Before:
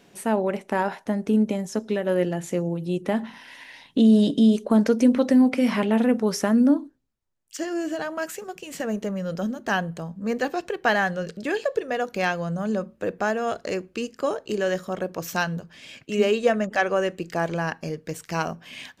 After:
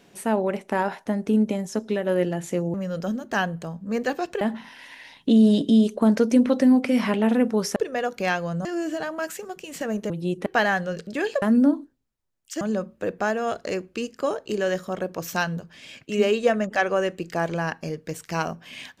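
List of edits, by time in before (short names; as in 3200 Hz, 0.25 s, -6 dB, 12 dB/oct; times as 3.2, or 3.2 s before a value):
2.74–3.1 swap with 9.09–10.76
6.45–7.64 swap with 11.72–12.61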